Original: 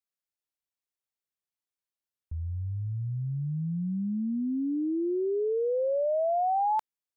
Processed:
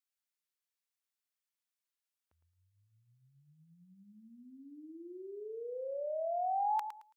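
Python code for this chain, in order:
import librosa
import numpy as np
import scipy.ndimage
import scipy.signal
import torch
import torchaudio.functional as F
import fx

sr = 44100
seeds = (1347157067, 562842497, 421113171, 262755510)

y = scipy.signal.sosfilt(scipy.signal.butter(2, 1100.0, 'highpass', fs=sr, output='sos'), x)
y = fx.echo_feedback(y, sr, ms=110, feedback_pct=23, wet_db=-9.5)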